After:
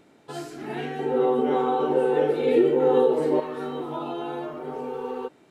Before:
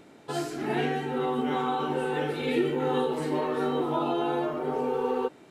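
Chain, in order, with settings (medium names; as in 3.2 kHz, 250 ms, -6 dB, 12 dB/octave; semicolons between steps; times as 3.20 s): 0.99–3.40 s: peaking EQ 480 Hz +14 dB 1.6 oct; trim -4 dB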